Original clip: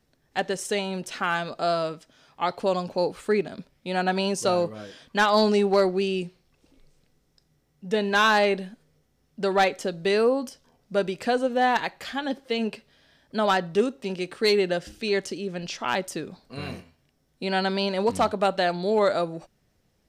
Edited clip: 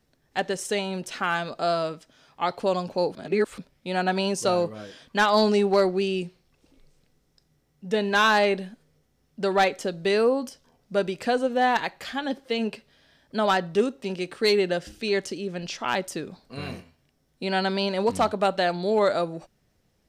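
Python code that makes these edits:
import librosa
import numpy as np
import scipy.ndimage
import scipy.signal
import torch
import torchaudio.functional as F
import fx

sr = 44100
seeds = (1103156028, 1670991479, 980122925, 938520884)

y = fx.edit(x, sr, fx.reverse_span(start_s=3.15, length_s=0.43), tone=tone)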